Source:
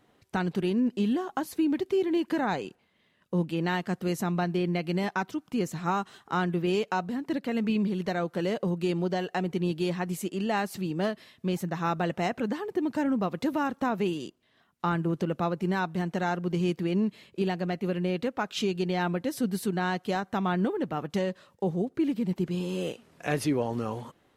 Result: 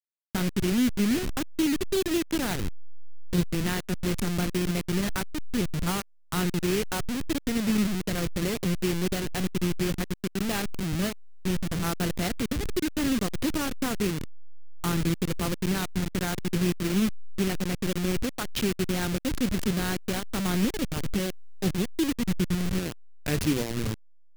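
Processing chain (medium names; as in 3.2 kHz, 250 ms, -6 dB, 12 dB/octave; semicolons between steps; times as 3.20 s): send-on-delta sampling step -25.5 dBFS; peaking EQ 800 Hz -11 dB 1.8 oct; trim +5 dB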